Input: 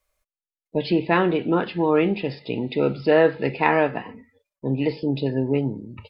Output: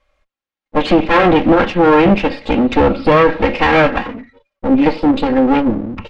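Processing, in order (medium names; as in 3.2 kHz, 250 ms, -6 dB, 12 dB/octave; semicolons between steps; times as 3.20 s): comb filter that takes the minimum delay 3.7 ms; low-pass 3.1 kHz 12 dB/octave; loudness maximiser +16 dB; trim -1 dB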